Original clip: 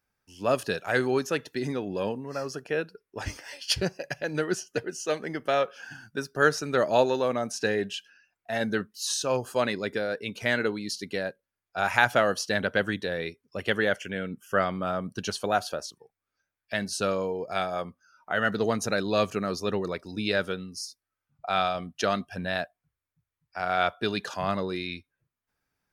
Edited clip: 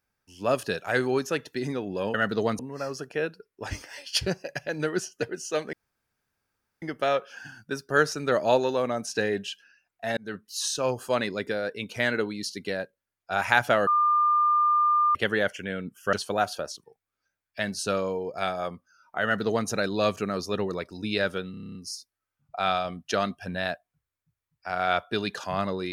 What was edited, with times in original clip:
0:05.28: splice in room tone 1.09 s
0:08.63–0:08.95: fade in
0:12.33–0:13.61: beep over 1,200 Hz −18.5 dBFS
0:14.59–0:15.27: remove
0:18.37–0:18.82: duplicate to 0:02.14
0:20.65: stutter 0.03 s, 9 plays

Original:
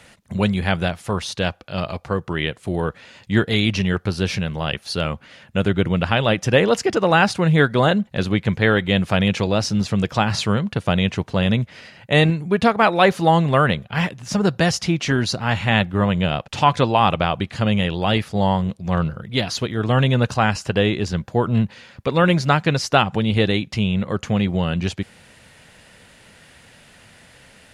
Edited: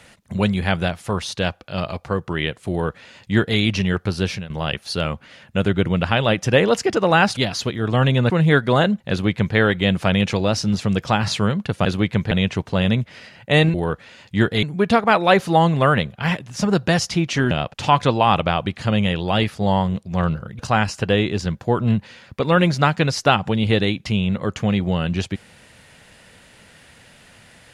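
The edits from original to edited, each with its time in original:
0:02.70–0:03.59: duplicate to 0:12.35
0:04.24–0:04.50: fade out, to −15 dB
0:08.17–0:08.63: duplicate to 0:10.92
0:15.23–0:16.25: remove
0:19.33–0:20.26: move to 0:07.37

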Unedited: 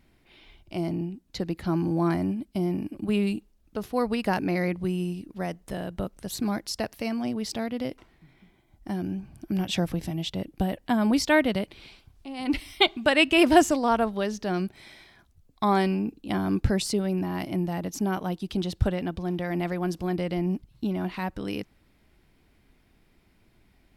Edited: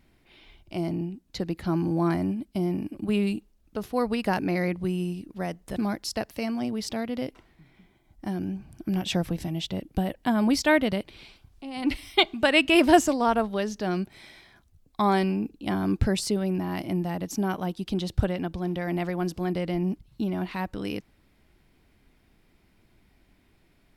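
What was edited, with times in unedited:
0:05.76–0:06.39: remove

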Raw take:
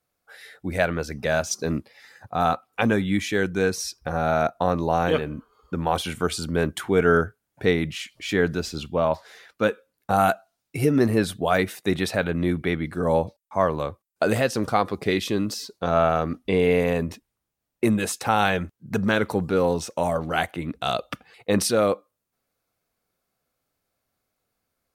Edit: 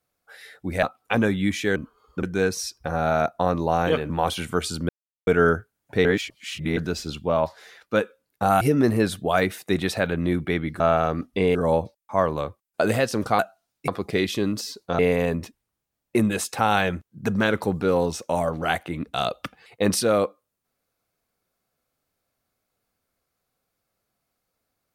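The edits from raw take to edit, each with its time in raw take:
0:00.83–0:02.51: remove
0:05.31–0:05.78: move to 0:03.44
0:06.57–0:06.95: silence
0:07.73–0:08.45: reverse
0:10.29–0:10.78: move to 0:14.81
0:15.92–0:16.67: move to 0:12.97

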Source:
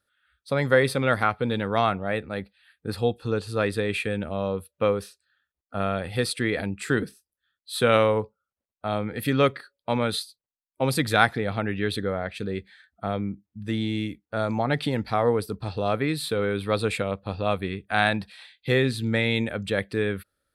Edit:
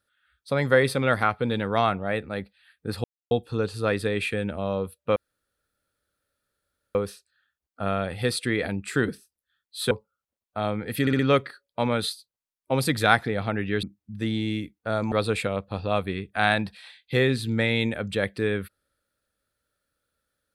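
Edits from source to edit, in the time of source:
0:03.04: splice in silence 0.27 s
0:04.89: splice in room tone 1.79 s
0:07.85–0:08.19: remove
0:09.29: stutter 0.06 s, 4 plays
0:11.93–0:13.30: remove
0:14.59–0:16.67: remove

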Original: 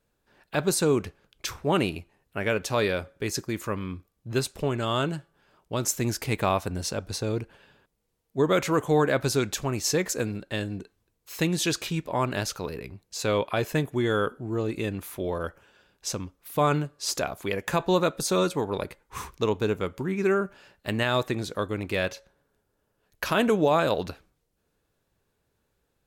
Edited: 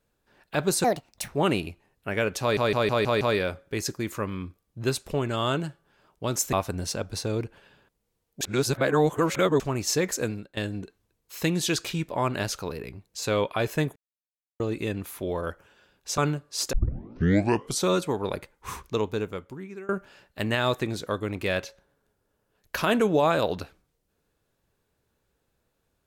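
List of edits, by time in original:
0:00.84–0:01.58: play speed 165%
0:02.70: stutter 0.16 s, 6 plays
0:06.02–0:06.50: remove
0:08.38–0:09.57: reverse
0:10.25–0:10.54: fade out, to −16.5 dB
0:13.93–0:14.57: silence
0:16.15–0:16.66: remove
0:17.21: tape start 1.14 s
0:19.30–0:20.37: fade out, to −23.5 dB

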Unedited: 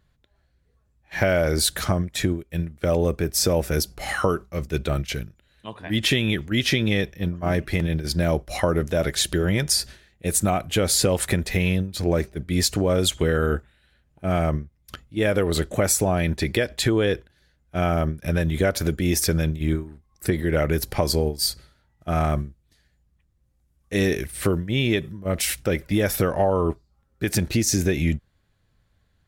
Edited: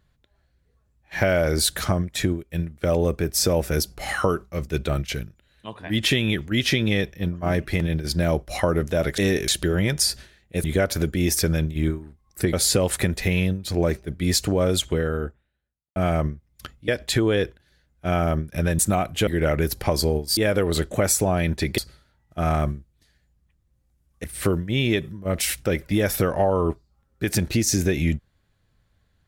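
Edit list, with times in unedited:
0:10.34–0:10.82: swap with 0:18.49–0:20.38
0:12.87–0:14.25: fade out and dull
0:15.17–0:16.58: move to 0:21.48
0:23.94–0:24.24: move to 0:09.18

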